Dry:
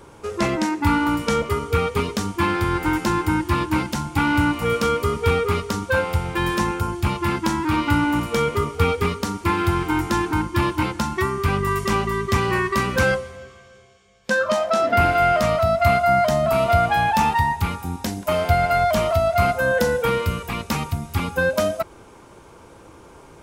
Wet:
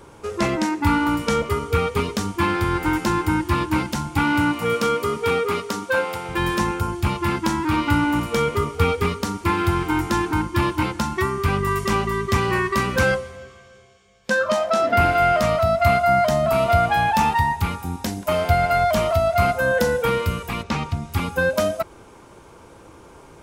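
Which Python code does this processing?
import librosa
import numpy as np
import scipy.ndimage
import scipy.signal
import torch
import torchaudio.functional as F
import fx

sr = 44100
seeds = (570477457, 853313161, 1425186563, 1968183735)

y = fx.highpass(x, sr, hz=fx.line((4.23, 100.0), (6.28, 290.0)), slope=12, at=(4.23, 6.28), fade=0.02)
y = fx.lowpass(y, sr, hz=fx.line((20.62, 4300.0), (21.11, 7400.0)), slope=12, at=(20.62, 21.11), fade=0.02)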